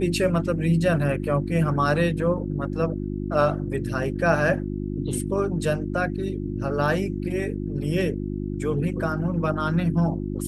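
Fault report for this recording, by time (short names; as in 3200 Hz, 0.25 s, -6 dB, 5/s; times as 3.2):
hum 50 Hz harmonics 7 -29 dBFS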